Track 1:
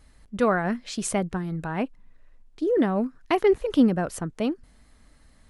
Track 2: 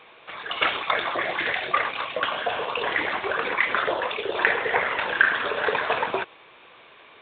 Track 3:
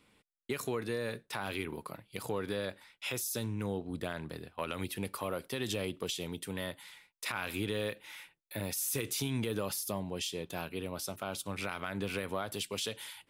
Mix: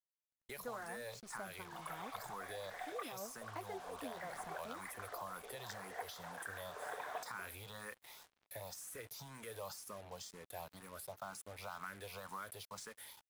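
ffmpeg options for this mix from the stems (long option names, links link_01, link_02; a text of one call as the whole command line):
ffmpeg -i stem1.wav -i stem2.wav -i stem3.wav -filter_complex "[0:a]flanger=delay=1.6:depth=7:regen=-23:speed=1:shape=sinusoidal,adelay=250,volume=-10.5dB[link_01];[1:a]equalizer=frequency=730:width=7.2:gain=10.5,adelay=1250,volume=-13.5dB[link_02];[2:a]equalizer=frequency=320:width=1.3:gain=-14,asplit=2[link_03][link_04];[link_04]afreqshift=2[link_05];[link_03][link_05]amix=inputs=2:normalize=1,volume=2.5dB,asplit=2[link_06][link_07];[link_07]apad=whole_len=373204[link_08];[link_02][link_08]sidechaincompress=threshold=-51dB:ratio=3:attack=16:release=155[link_09];[link_01][link_09][link_06]amix=inputs=3:normalize=0,equalizer=frequency=2800:width_type=o:width=0.9:gain=-15,acrossover=split=550|2200[link_10][link_11][link_12];[link_10]acompressor=threshold=-58dB:ratio=4[link_13];[link_11]acompressor=threshold=-44dB:ratio=4[link_14];[link_12]acompressor=threshold=-52dB:ratio=4[link_15];[link_13][link_14][link_15]amix=inputs=3:normalize=0,acrusher=bits=8:mix=0:aa=0.5" out.wav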